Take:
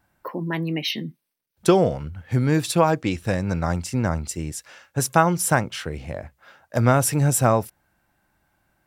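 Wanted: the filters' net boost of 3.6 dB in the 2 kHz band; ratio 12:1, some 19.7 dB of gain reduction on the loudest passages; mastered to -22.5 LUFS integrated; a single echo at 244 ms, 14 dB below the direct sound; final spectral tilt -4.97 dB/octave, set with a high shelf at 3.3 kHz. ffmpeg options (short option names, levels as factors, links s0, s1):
-af "equalizer=f=2000:t=o:g=7,highshelf=f=3300:g=-6.5,acompressor=threshold=0.0282:ratio=12,aecho=1:1:244:0.2,volume=5.01"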